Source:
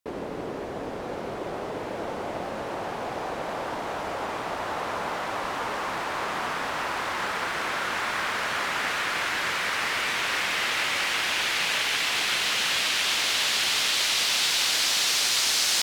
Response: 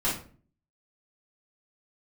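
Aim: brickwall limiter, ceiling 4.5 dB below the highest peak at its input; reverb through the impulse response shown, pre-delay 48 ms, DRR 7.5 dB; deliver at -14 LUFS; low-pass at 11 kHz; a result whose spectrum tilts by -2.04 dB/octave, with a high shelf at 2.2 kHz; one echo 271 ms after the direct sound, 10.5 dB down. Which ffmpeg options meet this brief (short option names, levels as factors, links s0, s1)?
-filter_complex "[0:a]lowpass=11000,highshelf=f=2200:g=5.5,alimiter=limit=0.251:level=0:latency=1,aecho=1:1:271:0.299,asplit=2[s0][s1];[1:a]atrim=start_sample=2205,adelay=48[s2];[s1][s2]afir=irnorm=-1:irlink=0,volume=0.133[s3];[s0][s3]amix=inputs=2:normalize=0,volume=2.51"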